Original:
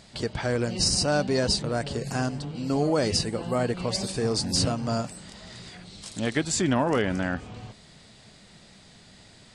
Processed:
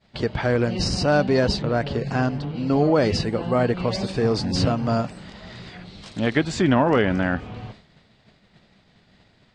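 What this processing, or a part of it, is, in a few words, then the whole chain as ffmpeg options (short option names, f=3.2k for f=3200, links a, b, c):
hearing-loss simulation: -filter_complex "[0:a]lowpass=3.3k,agate=range=-33dB:threshold=-45dB:ratio=3:detection=peak,asettb=1/sr,asplit=3[a][b][c];[a]atrim=end=1.574[d];[b]atrim=start=1.57:end=3.01,asetpts=PTS-STARTPTS,afade=t=in:d=0.004:c=qsin,afade=t=out:st=1.436:d=0.004:c=qsin,lowpass=6.8k[e];[c]atrim=start=3.006[f];[d][e]acrossfade=d=0.004:c1=hsin:c2=qsin[g];[g][f]acrossfade=d=0.004:c1=qsin:c2=hsin,volume=5.5dB"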